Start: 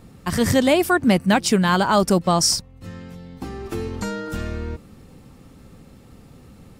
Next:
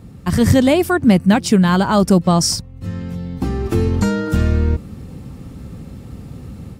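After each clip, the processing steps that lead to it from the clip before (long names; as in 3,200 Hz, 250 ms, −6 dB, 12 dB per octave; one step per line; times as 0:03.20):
high-pass filter 50 Hz
low-shelf EQ 250 Hz +11.5 dB
automatic gain control gain up to 5.5 dB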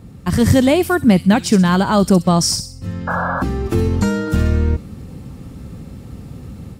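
sound drawn into the spectrogram noise, 0:03.07–0:03.43, 490–1,700 Hz −21 dBFS
delay with a high-pass on its return 64 ms, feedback 38%, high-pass 3,900 Hz, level −7 dB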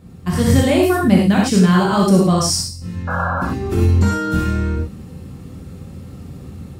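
notch filter 860 Hz, Q 18
reverb whose tail is shaped and stops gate 130 ms flat, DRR −3 dB
level −5 dB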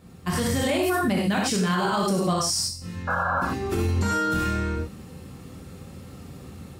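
low-shelf EQ 360 Hz −9.5 dB
brickwall limiter −15.5 dBFS, peak gain reduction 8.5 dB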